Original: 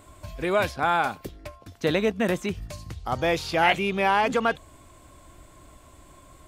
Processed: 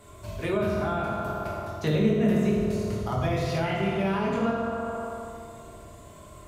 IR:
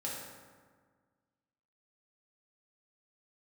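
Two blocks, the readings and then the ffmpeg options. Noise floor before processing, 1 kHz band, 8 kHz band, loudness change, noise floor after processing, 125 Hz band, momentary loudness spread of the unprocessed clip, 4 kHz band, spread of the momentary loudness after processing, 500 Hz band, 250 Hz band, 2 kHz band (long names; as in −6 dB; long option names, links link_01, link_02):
−52 dBFS, −6.5 dB, −4.0 dB, −2.5 dB, −47 dBFS, +6.5 dB, 17 LU, −7.5 dB, 18 LU, −1.0 dB, +4.0 dB, −8.5 dB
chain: -filter_complex "[1:a]atrim=start_sample=2205,asetrate=33516,aresample=44100[link_01];[0:a][link_01]afir=irnorm=-1:irlink=0,acrossover=split=300[link_02][link_03];[link_03]acompressor=threshold=-29dB:ratio=6[link_04];[link_02][link_04]amix=inputs=2:normalize=0"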